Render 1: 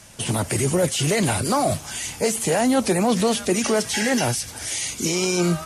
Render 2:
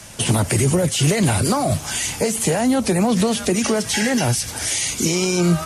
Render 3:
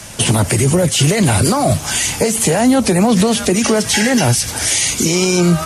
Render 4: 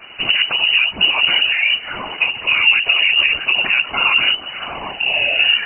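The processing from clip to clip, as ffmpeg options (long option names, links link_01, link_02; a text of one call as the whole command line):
ffmpeg -i in.wav -filter_complex "[0:a]acrossover=split=190[link_01][link_02];[link_02]acompressor=threshold=-25dB:ratio=6[link_03];[link_01][link_03]amix=inputs=2:normalize=0,volume=7dB" out.wav
ffmpeg -i in.wav -af "alimiter=limit=-10.5dB:level=0:latency=1:release=158,volume=6.5dB" out.wav
ffmpeg -i in.wav -af "afftfilt=real='hypot(re,im)*cos(2*PI*random(0))':imag='hypot(re,im)*sin(2*PI*random(1))':win_size=512:overlap=0.75,lowpass=frequency=2600:width_type=q:width=0.5098,lowpass=frequency=2600:width_type=q:width=0.6013,lowpass=frequency=2600:width_type=q:width=0.9,lowpass=frequency=2600:width_type=q:width=2.563,afreqshift=-3000,volume=4dB" out.wav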